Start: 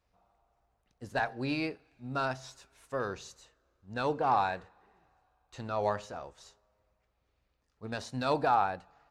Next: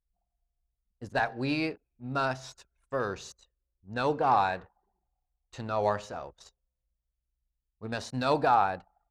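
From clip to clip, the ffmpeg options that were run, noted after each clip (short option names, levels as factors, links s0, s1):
-af "anlmdn=0.000631,volume=1.41"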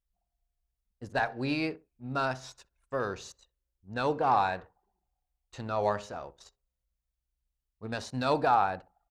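-filter_complex "[0:a]asplit=2[s0][s1];[s1]adelay=63,lowpass=f=1000:p=1,volume=0.126,asplit=2[s2][s3];[s3]adelay=63,lowpass=f=1000:p=1,volume=0.25[s4];[s0][s2][s4]amix=inputs=3:normalize=0,volume=0.891"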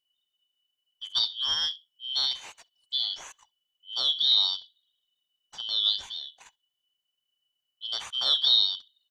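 -af "afftfilt=real='real(if(lt(b,272),68*(eq(floor(b/68),0)*2+eq(floor(b/68),1)*3+eq(floor(b/68),2)*0+eq(floor(b/68),3)*1)+mod(b,68),b),0)':imag='imag(if(lt(b,272),68*(eq(floor(b/68),0)*2+eq(floor(b/68),1)*3+eq(floor(b/68),2)*0+eq(floor(b/68),3)*1)+mod(b,68),b),0)':win_size=2048:overlap=0.75,volume=1.33"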